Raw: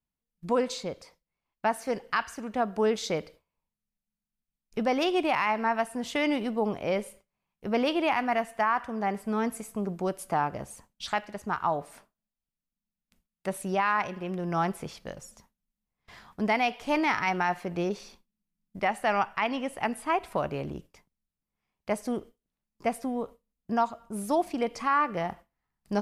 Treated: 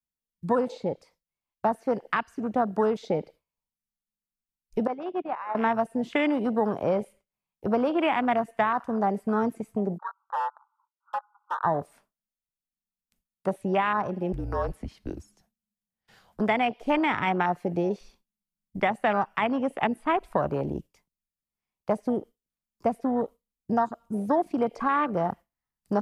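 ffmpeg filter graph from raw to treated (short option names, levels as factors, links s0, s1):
-filter_complex "[0:a]asettb=1/sr,asplit=3[s0][s1][s2];[s0]atrim=end=4.874[s3];[s1]atrim=start=4.87:end=5.55,asetpts=PTS-STARTPTS,afade=t=in:d=0.004:c=qsin,afade=t=out:st=0.676:d=0.004:c=qsin,lowpass=2900,agate=range=0.0224:threshold=0.141:ratio=3:release=100:detection=peak,equalizer=f=1800:w=0.91:g=4.5[s4];[s2]atrim=start=5.546[s5];[s3][s4]acrossfade=d=0.004:c1=hsin:c2=qsin[s6];[s6][s5]acrossfade=d=0.004:c1=qsin:c2=hsin,asettb=1/sr,asplit=3[s7][s8][s9];[s7]atrim=end=9.984[s10];[s8]atrim=start=9.98:end=11.64,asetpts=PTS-STARTPTS,afade=t=in:d=0.004:c=qsin,afade=t=out:st=1.656:d=0.004:c=qsin,asuperpass=centerf=1100:order=20:qfactor=1.7,asoftclip=type=hard:threshold=0.0266[s11];[s9]atrim=start=11.636[s12];[s10][s11]acrossfade=d=0.004:c1=hsin:c2=qsin[s13];[s13][s12]acrossfade=d=0.004:c1=qsin:c2=hsin,asettb=1/sr,asplit=3[s14][s15][s16];[s14]atrim=end=14.324[s17];[s15]atrim=start=14.32:end=16.4,asetpts=PTS-STARTPTS,afade=t=in:d=0.004:c=qsin,afade=t=out:st=2.076:d=0.004:c=qsin,acrossover=split=350|3000[s18][s19][s20];[s19]acompressor=threshold=0.0178:ratio=2.5:attack=3.2:release=140:knee=2.83:detection=peak[s21];[s18][s21][s20]amix=inputs=3:normalize=0,afreqshift=-230[s22];[s16]atrim=start=16.396[s23];[s17][s22]acrossfade=d=0.004:c1=hsin:c2=qsin[s24];[s24][s23]acrossfade=d=0.004:c1=qsin:c2=hsin,highshelf=f=4500:g=7.5,acrossover=split=230|700|3800[s25][s26][s27][s28];[s25]acompressor=threshold=0.00891:ratio=4[s29];[s26]acompressor=threshold=0.02:ratio=4[s30];[s27]acompressor=threshold=0.02:ratio=4[s31];[s28]acompressor=threshold=0.00224:ratio=4[s32];[s29][s30][s31][s32]amix=inputs=4:normalize=0,afwtdn=0.0158,volume=2.37"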